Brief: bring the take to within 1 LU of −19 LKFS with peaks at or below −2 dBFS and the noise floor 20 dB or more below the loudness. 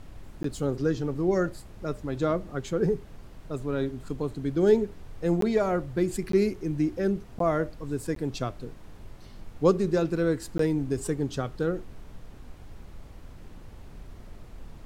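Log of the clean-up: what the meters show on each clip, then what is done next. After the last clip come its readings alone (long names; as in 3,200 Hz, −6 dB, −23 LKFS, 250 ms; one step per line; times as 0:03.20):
number of dropouts 6; longest dropout 13 ms; background noise floor −47 dBFS; target noise floor −48 dBFS; integrated loudness −28.0 LKFS; sample peak −8.5 dBFS; target loudness −19.0 LKFS
→ repair the gap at 0:00.43/0:05.41/0:06.32/0:07.39/0:08.15/0:10.58, 13 ms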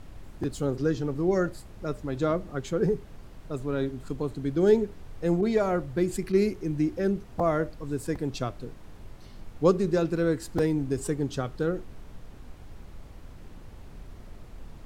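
number of dropouts 0; background noise floor −47 dBFS; target noise floor −48 dBFS
→ noise reduction from a noise print 6 dB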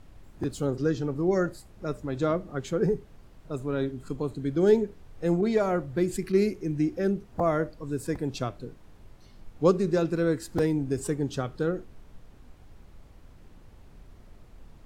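background noise floor −52 dBFS; integrated loudness −28.0 LKFS; sample peak −8.5 dBFS; target loudness −19.0 LKFS
→ level +9 dB
brickwall limiter −2 dBFS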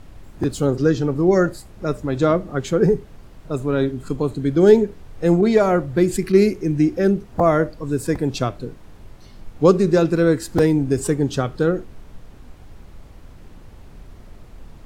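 integrated loudness −19.0 LKFS; sample peak −2.0 dBFS; background noise floor −43 dBFS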